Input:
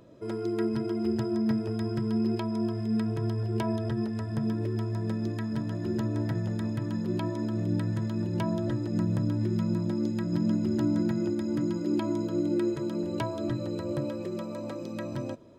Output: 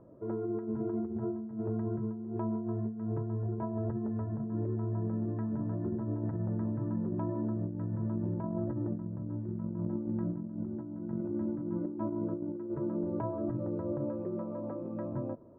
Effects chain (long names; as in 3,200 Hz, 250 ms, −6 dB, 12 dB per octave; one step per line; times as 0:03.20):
low-pass filter 1,200 Hz 24 dB per octave
compressor whose output falls as the input rises −30 dBFS, ratio −0.5
level −3.5 dB